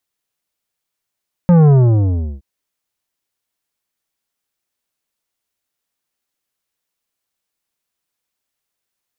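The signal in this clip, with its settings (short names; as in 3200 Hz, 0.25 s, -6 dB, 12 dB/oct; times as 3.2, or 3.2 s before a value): sub drop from 180 Hz, over 0.92 s, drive 11 dB, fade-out 0.73 s, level -7 dB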